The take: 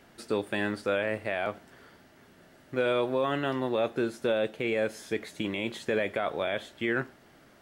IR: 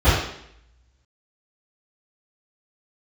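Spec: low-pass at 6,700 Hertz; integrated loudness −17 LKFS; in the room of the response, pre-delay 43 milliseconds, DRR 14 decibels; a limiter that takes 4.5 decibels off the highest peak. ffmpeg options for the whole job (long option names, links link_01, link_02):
-filter_complex "[0:a]lowpass=6700,alimiter=limit=-19.5dB:level=0:latency=1,asplit=2[link_01][link_02];[1:a]atrim=start_sample=2205,adelay=43[link_03];[link_02][link_03]afir=irnorm=-1:irlink=0,volume=-36.5dB[link_04];[link_01][link_04]amix=inputs=2:normalize=0,volume=14.5dB"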